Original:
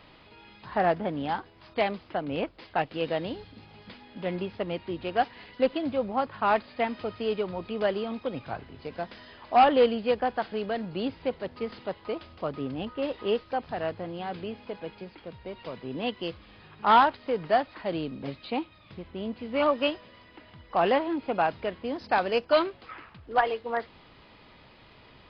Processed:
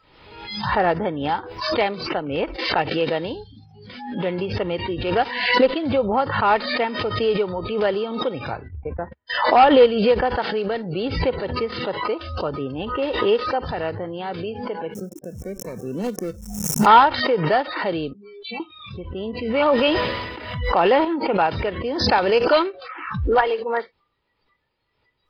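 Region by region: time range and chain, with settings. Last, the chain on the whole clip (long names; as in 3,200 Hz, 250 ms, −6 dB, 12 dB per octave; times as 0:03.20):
0:08.68–0:09.30: low-pass filter 1,800 Hz + noise gate −43 dBFS, range −53 dB + parametric band 71 Hz +13.5 dB 0.8 octaves
0:14.94–0:16.86: running median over 41 samples + parametric band 200 Hz +10 dB 0.43 octaves + centre clipping without the shift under −48 dBFS
0:18.13–0:18.60: noise gate −48 dBFS, range −20 dB + stiff-string resonator 200 Hz, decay 0.37 s, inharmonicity 0.008
0:19.54–0:21.05: high-pass filter 43 Hz 6 dB per octave + transient designer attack +1 dB, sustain +5 dB + level that may fall only so fast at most 37 dB per second
whole clip: noise reduction from a noise print of the clip's start 27 dB; comb filter 2.2 ms, depth 34%; background raised ahead of every attack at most 55 dB per second; level +5.5 dB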